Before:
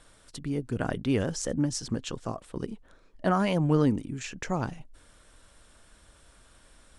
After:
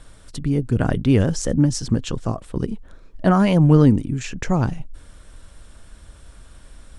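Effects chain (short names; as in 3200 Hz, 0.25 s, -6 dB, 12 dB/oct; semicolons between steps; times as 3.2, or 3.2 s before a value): low shelf 200 Hz +11 dB; gain +5.5 dB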